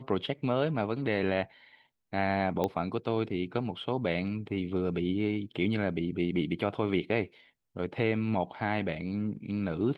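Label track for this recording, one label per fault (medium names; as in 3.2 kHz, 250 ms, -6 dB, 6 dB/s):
2.640000	2.640000	pop -17 dBFS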